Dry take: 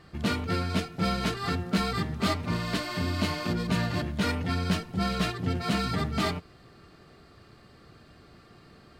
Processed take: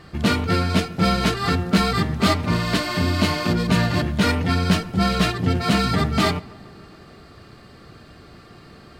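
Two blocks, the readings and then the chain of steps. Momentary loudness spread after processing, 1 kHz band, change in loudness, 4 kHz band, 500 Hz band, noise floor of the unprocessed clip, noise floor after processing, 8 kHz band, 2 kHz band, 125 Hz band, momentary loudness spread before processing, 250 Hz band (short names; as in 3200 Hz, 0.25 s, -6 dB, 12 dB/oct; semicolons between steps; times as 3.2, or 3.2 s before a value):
3 LU, +8.5 dB, +8.5 dB, +8.5 dB, +8.5 dB, -55 dBFS, -46 dBFS, +8.5 dB, +8.5 dB, +8.5 dB, 3 LU, +8.5 dB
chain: darkening echo 0.141 s, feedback 73%, low-pass 2000 Hz, level -22.5 dB; gain +8.5 dB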